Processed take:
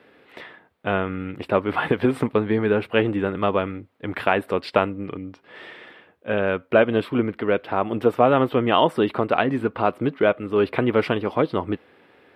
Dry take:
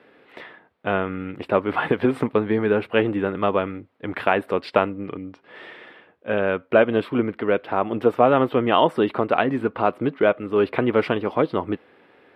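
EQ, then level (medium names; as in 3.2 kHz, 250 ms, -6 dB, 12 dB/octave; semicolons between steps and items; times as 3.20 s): bass shelf 100 Hz +8 dB; treble shelf 4.2 kHz +7 dB; -1.0 dB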